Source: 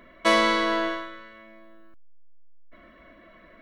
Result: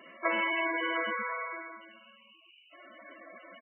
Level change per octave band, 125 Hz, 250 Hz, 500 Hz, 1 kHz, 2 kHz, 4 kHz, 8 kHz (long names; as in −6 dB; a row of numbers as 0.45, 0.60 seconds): can't be measured, −10.0 dB, −9.5 dB, −7.0 dB, −3.5 dB, −11.0 dB, below −35 dB